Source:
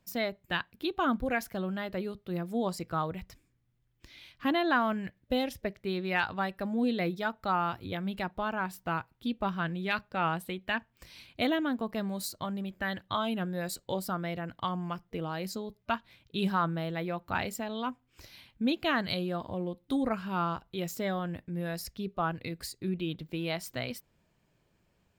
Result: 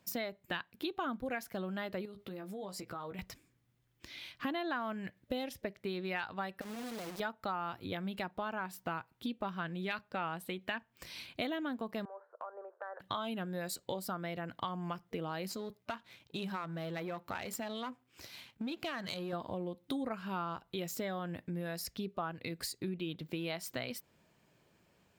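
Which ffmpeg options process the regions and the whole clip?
-filter_complex "[0:a]asettb=1/sr,asplit=3[a][b][c];[a]atrim=end=2.054[d];[b]atrim=start=2.05:end=3.19,asetpts=PTS-STARTPTS,afade=t=in:d=0.004:c=qsin,afade=t=out:st=1.136:d=0.004:c=qsin,asplit=2[e][f];[f]adelay=15,volume=-5dB[g];[e][g]amix=inputs=2:normalize=0,atrim=end_sample=50274,acompressor=threshold=-44dB:ratio=6:attack=3.2:release=140:knee=1:detection=peak[h];[c]atrim=start=3.186[i];[d][h]acrossfade=d=0.004:c1=hsin:c2=qsin[j];[j][i]acrossfade=d=0.004:c1=qsin:c2=hsin,asettb=1/sr,asplit=3[k][l][m];[k]atrim=end=6.614[n];[l]atrim=start=6.61:end=7.2,asetpts=PTS-STARTPTS,afade=t=in:d=0.004:c=qsin,afade=t=out:st=0.586:d=0.004:c=qsin,equalizer=f=2.1k:t=o:w=0.91:g=-11,acompressor=threshold=-37dB:ratio=6:attack=3.2:release=140:knee=1:detection=peak,acrusher=bits=5:dc=4:mix=0:aa=0.000001[o];[m]atrim=start=7.196[p];[n][o]acrossfade=d=0.004:c1=hsin:c2=qsin[q];[q][p]acrossfade=d=0.004:c1=qsin:c2=hsin,asettb=1/sr,asplit=3[r][s][t];[r]atrim=end=12.054[u];[s]atrim=start=12.05:end=13,asetpts=PTS-STARTPTS,afade=t=in:d=0.004:c=qsin,afade=t=out:st=0.946:d=0.004:c=qsin,asuperpass=centerf=810:order=12:qfactor=0.75,acompressor=threshold=-46dB:ratio=3:attack=3.2:release=140:knee=1:detection=peak[v];[t]atrim=start=12.996[w];[u][v]acrossfade=d=0.004:c1=hsin:c2=qsin[x];[x][w]acrossfade=d=0.004:c1=qsin:c2=hsin,asettb=1/sr,asplit=3[y][z][aa];[y]atrim=end=15.484[ab];[z]atrim=start=15.48:end=19.33,asetpts=PTS-STARTPTS,afade=t=in:d=0.004:c=qsin,afade=t=out:st=3.846:d=0.004:c=qsin,aeval=exprs='if(lt(val(0),0),0.447*val(0),val(0))':c=same,highpass=60,acompressor=threshold=-37dB:ratio=2:attack=3.2:release=140:knee=1:detection=peak[ac];[aa]atrim=start=19.326[ad];[ab][ac]acrossfade=d=0.004:c1=hsin:c2=qsin[ae];[ae][ad]acrossfade=d=0.004:c1=qsin:c2=hsin,highpass=f=170:p=1,acompressor=threshold=-41dB:ratio=4,volume=4.5dB"

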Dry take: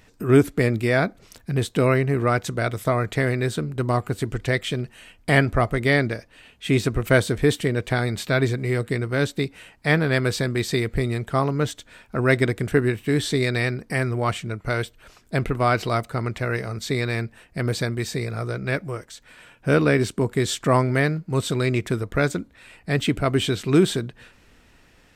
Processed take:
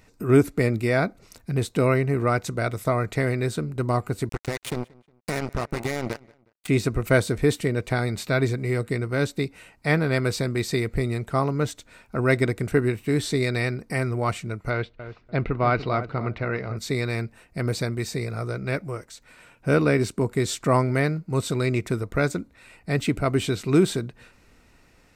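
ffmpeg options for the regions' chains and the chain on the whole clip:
-filter_complex "[0:a]asettb=1/sr,asplit=3[a][b][c];[a]atrim=end=4.294[d];[b]atrim=start=4.29:end=6.68,asetpts=PTS-STARTPTS,afade=t=in:d=0.004:c=qsin,afade=t=out:st=2.386:d=0.004:c=qsin,acompressor=threshold=-21dB:ratio=10:attack=3.2:release=140:knee=1:detection=peak,acrusher=bits=3:mix=0:aa=0.5,asplit=2[e][f];[f]adelay=181,lowpass=f=4.1k:p=1,volume=-24dB,asplit=2[g][h];[h]adelay=181,lowpass=f=4.1k:p=1,volume=0.38[i];[e][g][i]amix=inputs=3:normalize=0,atrim=end_sample=105399[j];[c]atrim=start=6.676[k];[d][j]acrossfade=d=0.004:c1=hsin:c2=qsin[l];[l][k]acrossfade=d=0.004:c1=qsin:c2=hsin,asettb=1/sr,asplit=3[m][n][o];[m]atrim=end=14.704[p];[n]atrim=start=14.7:end=16.77,asetpts=PTS-STARTPTS,afade=t=in:d=0.004:c=qsin,afade=t=out:st=2.066:d=0.004:c=qsin,lowpass=f=4k:w=0.5412,lowpass=f=4k:w=1.3066,asplit=2[q][r];[r]adelay=293,lowpass=f=1k:p=1,volume=-10.5dB,asplit=2[s][t];[t]adelay=293,lowpass=f=1k:p=1,volume=0.25,asplit=2[u][v];[v]adelay=293,lowpass=f=1k:p=1,volume=0.25[w];[q][s][u][w]amix=inputs=4:normalize=0,atrim=end_sample=91287[x];[o]atrim=start=16.766[y];[p][x]acrossfade=d=0.004:c1=hsin:c2=qsin[z];[z][y]acrossfade=d=0.004:c1=qsin:c2=hsin,equalizer=f=3.2k:w=5.1:g=-8,bandreject=f=1.7k:w=11,volume=-1.5dB"

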